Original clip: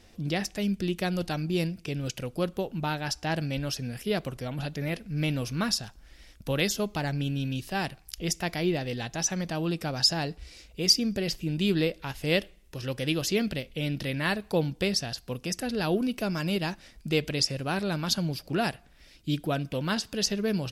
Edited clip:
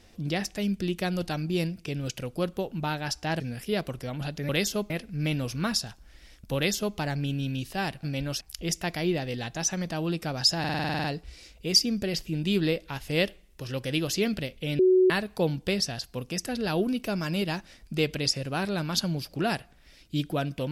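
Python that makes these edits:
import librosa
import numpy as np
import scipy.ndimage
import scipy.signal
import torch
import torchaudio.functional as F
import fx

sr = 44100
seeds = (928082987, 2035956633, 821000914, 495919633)

y = fx.edit(x, sr, fx.move(start_s=3.4, length_s=0.38, to_s=8.0),
    fx.duplicate(start_s=6.53, length_s=0.41, to_s=4.87),
    fx.stutter(start_s=10.18, slice_s=0.05, count=10),
    fx.bleep(start_s=13.93, length_s=0.31, hz=371.0, db=-16.0), tone=tone)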